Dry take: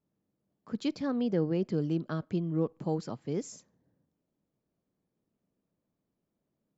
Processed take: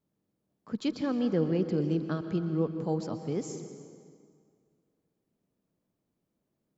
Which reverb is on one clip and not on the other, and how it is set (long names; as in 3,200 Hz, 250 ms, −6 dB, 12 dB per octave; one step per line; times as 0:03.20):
dense smooth reverb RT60 2.1 s, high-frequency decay 0.75×, pre-delay 110 ms, DRR 8.5 dB
level +1 dB